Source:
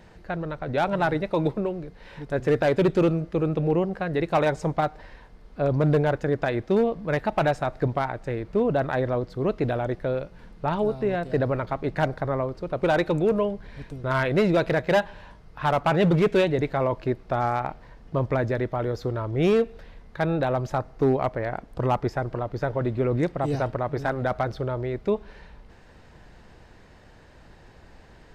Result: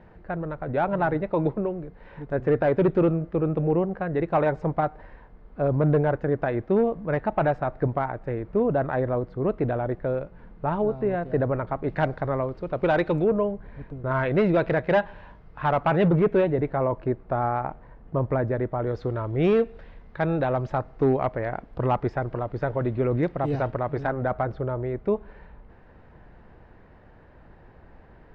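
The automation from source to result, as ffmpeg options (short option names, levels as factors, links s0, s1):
-af "asetnsamples=n=441:p=0,asendcmd='11.88 lowpass f 3000;13.24 lowpass f 1500;14.23 lowpass f 2400;16.08 lowpass f 1500;18.87 lowpass f 2800;24.07 lowpass f 1700',lowpass=1700"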